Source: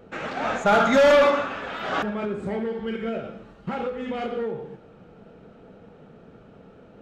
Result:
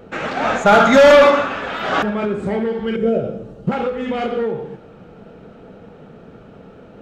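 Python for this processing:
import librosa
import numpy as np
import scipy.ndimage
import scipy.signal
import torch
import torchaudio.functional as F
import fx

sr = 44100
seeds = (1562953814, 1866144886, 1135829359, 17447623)

y = fx.graphic_eq(x, sr, hz=(125, 500, 1000, 2000, 4000), db=(8, 8, -7, -9, -5), at=(2.96, 3.72))
y = y * librosa.db_to_amplitude(7.5)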